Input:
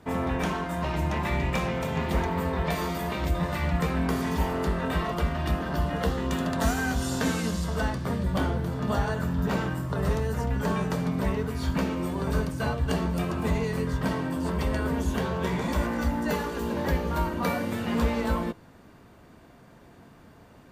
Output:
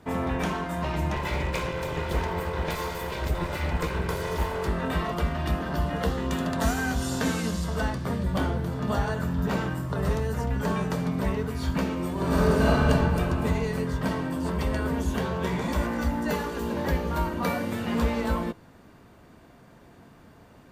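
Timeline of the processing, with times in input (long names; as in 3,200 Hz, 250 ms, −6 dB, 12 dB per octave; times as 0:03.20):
0:01.16–0:04.69: lower of the sound and its delayed copy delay 2 ms
0:12.13–0:12.83: thrown reverb, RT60 2.8 s, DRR −7 dB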